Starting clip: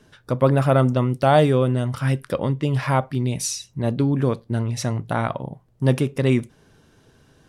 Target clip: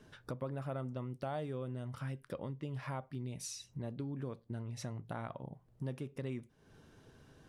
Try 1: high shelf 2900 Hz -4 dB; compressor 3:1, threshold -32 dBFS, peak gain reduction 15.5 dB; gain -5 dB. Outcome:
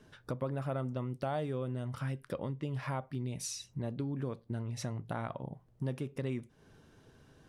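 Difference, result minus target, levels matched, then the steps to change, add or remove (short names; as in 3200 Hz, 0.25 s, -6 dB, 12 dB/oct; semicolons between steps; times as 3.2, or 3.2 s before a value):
compressor: peak gain reduction -4.5 dB
change: compressor 3:1, threshold -38.5 dBFS, peak gain reduction 20 dB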